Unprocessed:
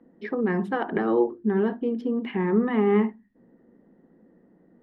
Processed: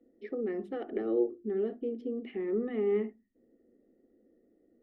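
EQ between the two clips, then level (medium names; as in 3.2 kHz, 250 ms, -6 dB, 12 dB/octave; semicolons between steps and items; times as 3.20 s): treble shelf 2.7 kHz -9.5 dB; static phaser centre 400 Hz, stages 4; band-stop 1.6 kHz, Q 5; -5.5 dB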